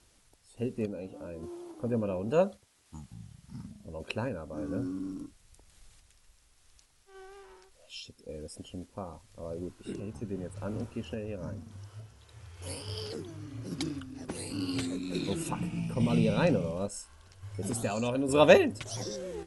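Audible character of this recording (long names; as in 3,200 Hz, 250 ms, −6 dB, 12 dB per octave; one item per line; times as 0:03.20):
a quantiser's noise floor 10 bits, dither triangular
sample-and-hold tremolo
AC-3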